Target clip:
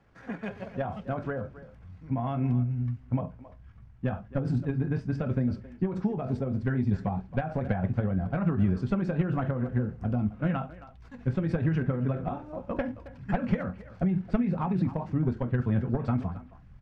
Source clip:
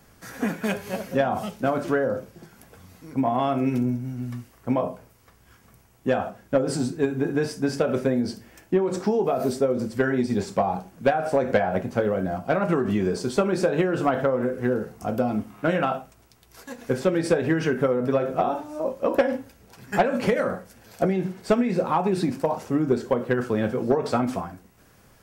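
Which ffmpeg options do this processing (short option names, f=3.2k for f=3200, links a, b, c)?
-filter_complex "[0:a]lowpass=2.7k,asubboost=boost=10:cutoff=130,atempo=1.5,asplit=2[a][b];[b]adelay=270,highpass=300,lowpass=3.4k,asoftclip=type=hard:threshold=-15.5dB,volume=-15dB[c];[a][c]amix=inputs=2:normalize=0,volume=-8dB"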